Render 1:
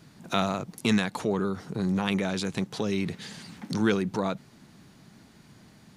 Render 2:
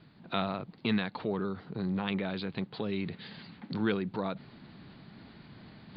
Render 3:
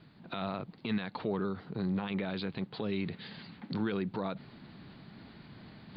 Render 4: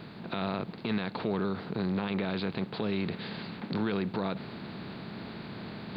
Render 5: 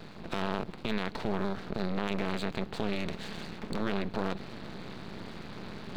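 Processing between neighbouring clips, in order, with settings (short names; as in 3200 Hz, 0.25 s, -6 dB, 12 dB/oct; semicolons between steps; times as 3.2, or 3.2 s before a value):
steep low-pass 4600 Hz 96 dB/oct; reverse; upward compressor, threshold -36 dBFS; reverse; gain -5.5 dB
limiter -23.5 dBFS, peak gain reduction 9 dB
per-bin compression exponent 0.6
half-wave rectifier; gain +2.5 dB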